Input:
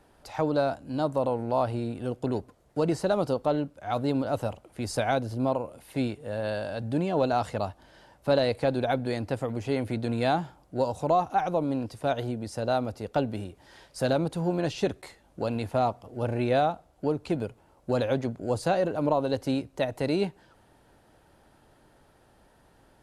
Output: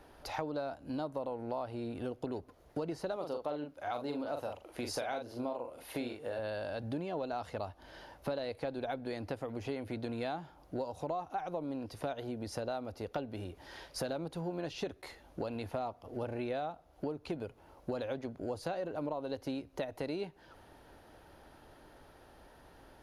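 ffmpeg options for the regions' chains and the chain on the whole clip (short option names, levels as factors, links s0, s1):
-filter_complex "[0:a]asettb=1/sr,asplit=3[s0][s1][s2];[s0]atrim=end=3.164[s3];[s1]atrim=start=3.16:end=6.39,asetpts=PTS-STARTPTS,afade=t=in:d=0.004:c=qsin,afade=t=out:st=3.226:d=0.004:c=qsin,bass=f=250:g=-8,treble=f=4000:g=0,asplit=2[s4][s5];[s5]adelay=41,volume=0.562[s6];[s4][s6]amix=inputs=2:normalize=0,atrim=end_sample=142443[s7];[s2]atrim=start=6.386[s8];[s3][s7]acrossfade=d=0.004:c1=hsin:c2=qsin[s9];[s9][s8]acrossfade=d=0.004:c1=qsin:c2=hsin,equalizer=f=125:t=o:w=0.33:g=-8,equalizer=f=200:t=o:w=0.33:g=-6,equalizer=f=8000:t=o:w=0.33:g=-12,acompressor=threshold=0.0112:ratio=5,volume=1.41"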